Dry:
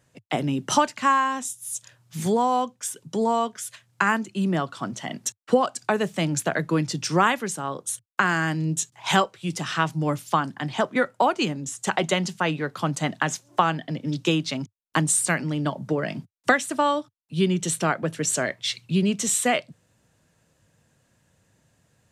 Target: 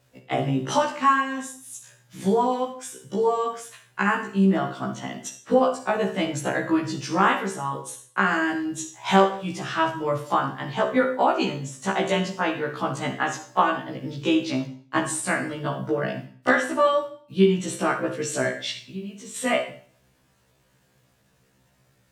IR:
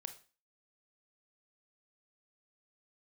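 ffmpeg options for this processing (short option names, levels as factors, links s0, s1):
-filter_complex "[0:a]highshelf=f=4900:g=-11,asettb=1/sr,asplit=3[s0][s1][s2];[s0]atrim=end=18.854[s3];[s1]atrim=start=18.85:end=19.36,asetpts=PTS-STARTPTS,afade=t=in:d=0.004:c=qsin,afade=t=out:st=0.506:d=0.004:c=qsin,acompressor=threshold=0.00794:ratio=2.5[s4];[s2]atrim=start=19.356[s5];[s3][s4]acrossfade=d=0.004:c1=hsin:c2=qsin[s6];[s6][s5]acrossfade=d=0.004:c1=qsin:c2=hsin,acrusher=bits=10:mix=0:aa=0.000001[s7];[1:a]atrim=start_sample=2205,asetrate=33075,aresample=44100[s8];[s7][s8]afir=irnorm=-1:irlink=0,afftfilt=real='re*1.73*eq(mod(b,3),0)':imag='im*1.73*eq(mod(b,3),0)':win_size=2048:overlap=0.75,volume=2"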